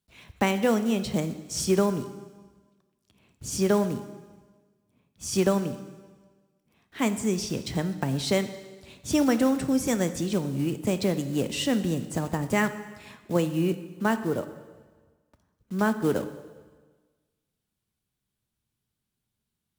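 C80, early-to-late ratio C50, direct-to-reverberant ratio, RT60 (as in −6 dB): 13.5 dB, 12.0 dB, 10.0 dB, 1.4 s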